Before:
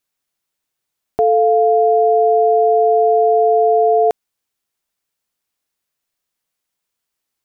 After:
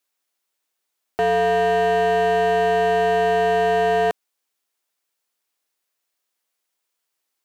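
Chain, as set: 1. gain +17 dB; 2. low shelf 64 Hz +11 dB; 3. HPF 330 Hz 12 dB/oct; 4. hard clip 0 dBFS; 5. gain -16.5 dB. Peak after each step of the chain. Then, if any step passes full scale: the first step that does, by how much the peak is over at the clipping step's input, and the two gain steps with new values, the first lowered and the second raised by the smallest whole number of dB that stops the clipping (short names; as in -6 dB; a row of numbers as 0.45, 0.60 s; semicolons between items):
+10.5, +11.0, +10.0, 0.0, -16.5 dBFS; step 1, 10.0 dB; step 1 +7 dB, step 5 -6.5 dB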